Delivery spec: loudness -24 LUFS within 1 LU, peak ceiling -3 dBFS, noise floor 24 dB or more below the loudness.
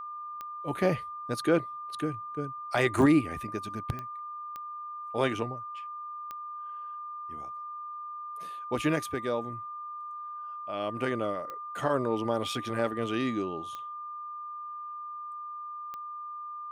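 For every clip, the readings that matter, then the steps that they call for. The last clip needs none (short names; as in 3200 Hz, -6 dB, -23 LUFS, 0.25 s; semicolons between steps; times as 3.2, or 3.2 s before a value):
clicks 8; steady tone 1200 Hz; tone level -37 dBFS; loudness -33.0 LUFS; peak -12.0 dBFS; loudness target -24.0 LUFS
-> de-click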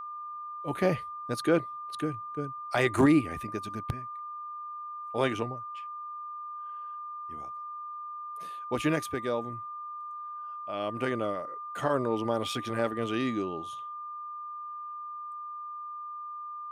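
clicks 0; steady tone 1200 Hz; tone level -37 dBFS
-> notch 1200 Hz, Q 30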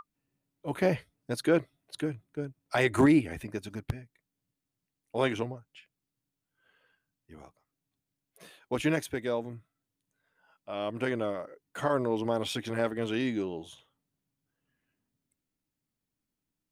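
steady tone none; loudness -31.0 LUFS; peak -12.5 dBFS; loudness target -24.0 LUFS
-> gain +7 dB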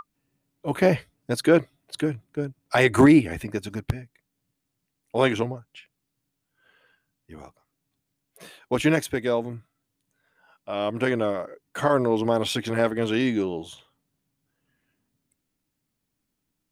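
loudness -24.0 LUFS; peak -5.5 dBFS; noise floor -80 dBFS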